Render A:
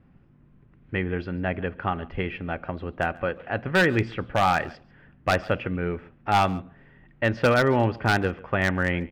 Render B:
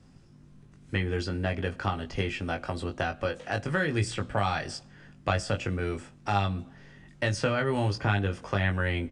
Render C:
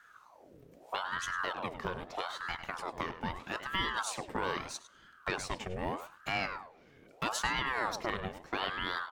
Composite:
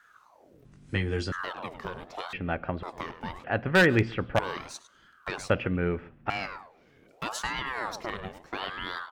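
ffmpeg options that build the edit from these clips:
-filter_complex "[0:a]asplit=3[a][b][c];[2:a]asplit=5[d][e][f][g][h];[d]atrim=end=0.652[i];[1:a]atrim=start=0.648:end=1.322[j];[e]atrim=start=1.318:end=2.332[k];[a]atrim=start=2.328:end=2.832[l];[f]atrim=start=2.828:end=3.442[m];[b]atrim=start=3.438:end=4.392[n];[g]atrim=start=4.388:end=5.502[o];[c]atrim=start=5.498:end=6.302[p];[h]atrim=start=6.298[q];[i][j]acrossfade=d=0.004:c1=hsin:c2=hsin[r];[r][k]acrossfade=d=0.004:c1=hsin:c2=hsin[s];[s][l]acrossfade=d=0.004:c1=hsin:c2=hsin[t];[t][m]acrossfade=d=0.004:c1=hsin:c2=hsin[u];[u][n]acrossfade=d=0.004:c1=hsin:c2=hsin[v];[v][o]acrossfade=d=0.004:c1=hsin:c2=hsin[w];[w][p]acrossfade=d=0.004:c1=hsin:c2=hsin[x];[x][q]acrossfade=d=0.004:c1=hsin:c2=hsin"

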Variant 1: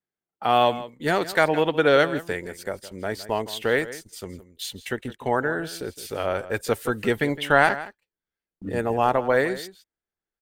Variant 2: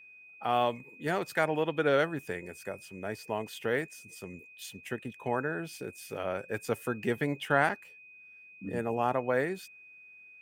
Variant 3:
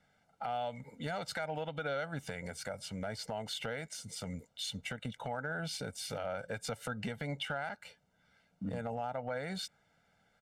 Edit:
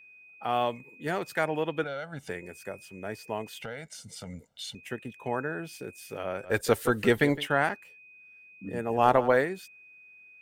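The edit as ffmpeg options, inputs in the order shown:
-filter_complex "[2:a]asplit=2[a][b];[0:a]asplit=2[c][d];[1:a]asplit=5[e][f][g][h][i];[e]atrim=end=1.842[j];[a]atrim=start=1.838:end=2.292[k];[f]atrim=start=2.288:end=3.622[l];[b]atrim=start=3.618:end=4.752[m];[g]atrim=start=4.748:end=6.52[n];[c]atrim=start=6.42:end=7.48[o];[h]atrim=start=7.38:end=9.09[p];[d]atrim=start=8.85:end=9.49[q];[i]atrim=start=9.25[r];[j][k]acrossfade=d=0.004:c1=hsin:c2=hsin[s];[s][l]acrossfade=d=0.004:c1=hsin:c2=hsin[t];[t][m]acrossfade=d=0.004:c1=hsin:c2=hsin[u];[u][n]acrossfade=d=0.004:c1=hsin:c2=hsin[v];[v][o]acrossfade=d=0.1:c1=tri:c2=tri[w];[w][p]acrossfade=d=0.1:c1=tri:c2=tri[x];[x][q]acrossfade=d=0.24:c1=tri:c2=tri[y];[y][r]acrossfade=d=0.24:c1=tri:c2=tri"

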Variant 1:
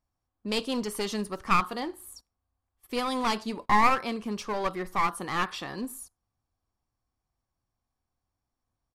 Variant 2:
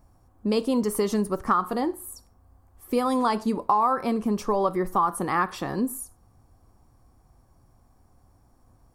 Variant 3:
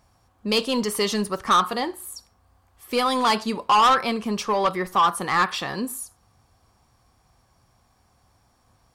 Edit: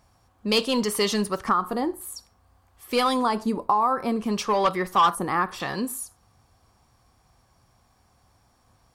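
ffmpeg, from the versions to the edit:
-filter_complex "[1:a]asplit=3[a][b][c];[2:a]asplit=4[d][e][f][g];[d]atrim=end=1.492[h];[a]atrim=start=1.488:end=2.012[i];[e]atrim=start=2.008:end=3.23[j];[b]atrim=start=3.07:end=4.32[k];[f]atrim=start=4.16:end=5.152[l];[c]atrim=start=5.148:end=5.602[m];[g]atrim=start=5.598[n];[h][i]acrossfade=d=0.004:c1=hsin:c2=hsin[o];[o][j]acrossfade=d=0.004:c1=hsin:c2=hsin[p];[p][k]acrossfade=d=0.16:c1=tri:c2=tri[q];[q][l]acrossfade=d=0.16:c1=tri:c2=tri[r];[r][m]acrossfade=d=0.004:c1=hsin:c2=hsin[s];[s][n]acrossfade=d=0.004:c1=hsin:c2=hsin"

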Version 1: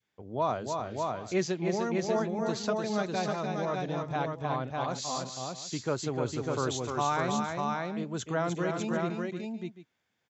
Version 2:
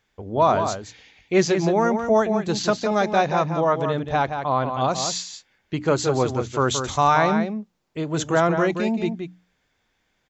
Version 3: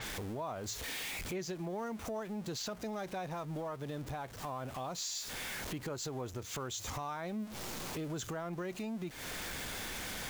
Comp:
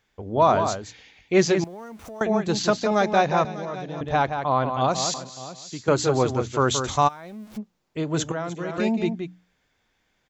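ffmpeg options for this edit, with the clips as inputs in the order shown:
-filter_complex "[2:a]asplit=2[a][b];[0:a]asplit=3[c][d][e];[1:a]asplit=6[f][g][h][i][j][k];[f]atrim=end=1.642[l];[a]atrim=start=1.638:end=2.212[m];[g]atrim=start=2.208:end=3.452[n];[c]atrim=start=3.448:end=4.012[o];[h]atrim=start=4.008:end=5.142[p];[d]atrim=start=5.138:end=5.882[q];[i]atrim=start=5.878:end=7.09[r];[b]atrim=start=7.07:end=7.58[s];[j]atrim=start=7.56:end=8.322[t];[e]atrim=start=8.318:end=8.782[u];[k]atrim=start=8.778[v];[l][m]acrossfade=d=0.004:c1=hsin:c2=hsin[w];[w][n]acrossfade=d=0.004:c1=hsin:c2=hsin[x];[x][o]acrossfade=d=0.004:c1=hsin:c2=hsin[y];[y][p]acrossfade=d=0.004:c1=hsin:c2=hsin[z];[z][q]acrossfade=d=0.004:c1=hsin:c2=hsin[aa];[aa][r]acrossfade=d=0.004:c1=hsin:c2=hsin[ab];[ab][s]acrossfade=d=0.02:c1=tri:c2=tri[ac];[ac][t]acrossfade=d=0.02:c1=tri:c2=tri[ad];[ad][u]acrossfade=d=0.004:c1=hsin:c2=hsin[ae];[ae][v]acrossfade=d=0.004:c1=hsin:c2=hsin"

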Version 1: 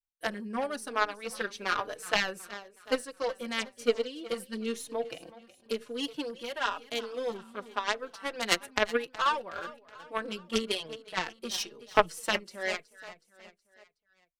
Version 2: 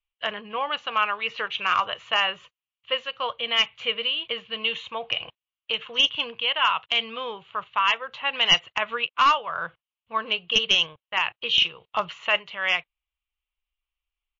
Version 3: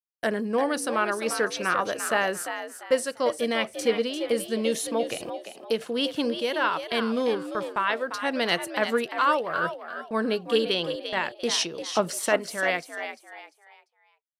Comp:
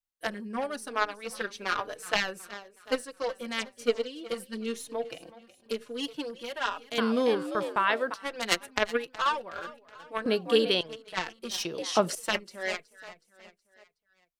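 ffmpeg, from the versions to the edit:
-filter_complex "[2:a]asplit=3[a][b][c];[0:a]asplit=4[d][e][f][g];[d]atrim=end=6.982[h];[a]atrim=start=6.978:end=8.142[i];[e]atrim=start=8.138:end=10.262[j];[b]atrim=start=10.258:end=10.812[k];[f]atrim=start=10.808:end=11.652[l];[c]atrim=start=11.648:end=12.152[m];[g]atrim=start=12.148[n];[h][i]acrossfade=d=0.004:c1=hsin:c2=hsin[o];[o][j]acrossfade=d=0.004:c1=hsin:c2=hsin[p];[p][k]acrossfade=d=0.004:c1=hsin:c2=hsin[q];[q][l]acrossfade=d=0.004:c1=hsin:c2=hsin[r];[r][m]acrossfade=d=0.004:c1=hsin:c2=hsin[s];[s][n]acrossfade=d=0.004:c1=hsin:c2=hsin"

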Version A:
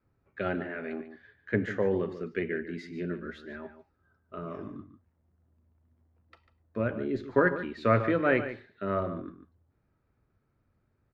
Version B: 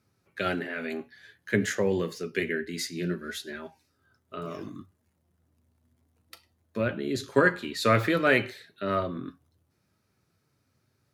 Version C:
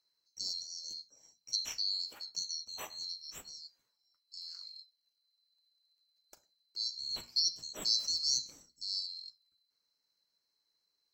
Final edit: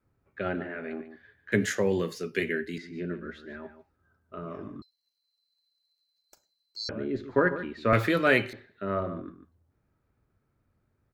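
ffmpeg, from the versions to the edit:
-filter_complex "[1:a]asplit=2[a][b];[0:a]asplit=4[c][d][e][f];[c]atrim=end=1.522[g];[a]atrim=start=1.518:end=2.782[h];[d]atrim=start=2.778:end=4.822[i];[2:a]atrim=start=4.818:end=6.892[j];[e]atrim=start=6.888:end=7.932[k];[b]atrim=start=7.928:end=8.532[l];[f]atrim=start=8.528[m];[g][h]acrossfade=d=0.004:c1=hsin:c2=hsin[n];[n][i]acrossfade=d=0.004:c1=hsin:c2=hsin[o];[o][j]acrossfade=d=0.004:c1=hsin:c2=hsin[p];[p][k]acrossfade=d=0.004:c1=hsin:c2=hsin[q];[q][l]acrossfade=d=0.004:c1=hsin:c2=hsin[r];[r][m]acrossfade=d=0.004:c1=hsin:c2=hsin"

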